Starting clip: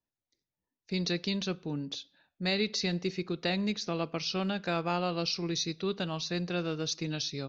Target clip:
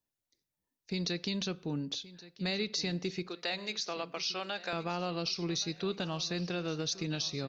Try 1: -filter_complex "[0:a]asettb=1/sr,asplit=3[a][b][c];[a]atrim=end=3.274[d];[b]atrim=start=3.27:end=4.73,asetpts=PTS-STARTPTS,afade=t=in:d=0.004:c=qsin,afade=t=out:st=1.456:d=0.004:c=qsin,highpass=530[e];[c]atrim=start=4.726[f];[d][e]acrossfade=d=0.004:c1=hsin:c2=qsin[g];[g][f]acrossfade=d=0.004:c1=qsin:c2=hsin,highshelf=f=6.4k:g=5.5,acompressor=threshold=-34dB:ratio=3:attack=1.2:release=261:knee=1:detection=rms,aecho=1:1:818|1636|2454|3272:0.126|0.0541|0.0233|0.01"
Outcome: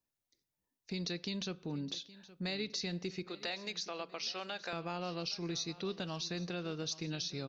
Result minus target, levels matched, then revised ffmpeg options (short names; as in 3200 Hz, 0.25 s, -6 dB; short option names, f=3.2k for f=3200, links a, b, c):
echo 0.305 s early; compressor: peak gain reduction +4.5 dB
-filter_complex "[0:a]asettb=1/sr,asplit=3[a][b][c];[a]atrim=end=3.274[d];[b]atrim=start=3.27:end=4.73,asetpts=PTS-STARTPTS,afade=t=in:d=0.004:c=qsin,afade=t=out:st=1.456:d=0.004:c=qsin,highpass=530[e];[c]atrim=start=4.726[f];[d][e]acrossfade=d=0.004:c1=hsin:c2=qsin[g];[g][f]acrossfade=d=0.004:c1=qsin:c2=hsin,highshelf=f=6.4k:g=5.5,acompressor=threshold=-27.5dB:ratio=3:attack=1.2:release=261:knee=1:detection=rms,aecho=1:1:1123|2246|3369|4492:0.126|0.0541|0.0233|0.01"